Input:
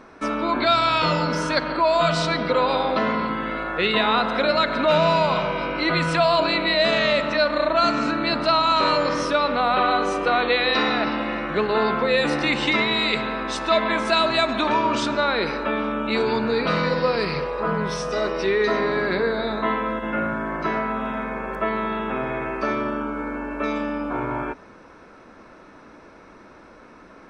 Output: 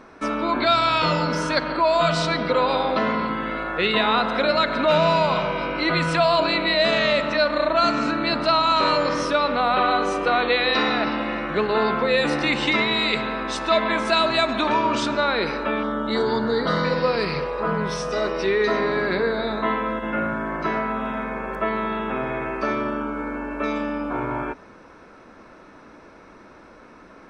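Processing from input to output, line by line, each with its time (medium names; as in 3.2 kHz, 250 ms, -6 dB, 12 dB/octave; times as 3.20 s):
15.83–16.85 s: Butterworth band-stop 2.5 kHz, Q 2.9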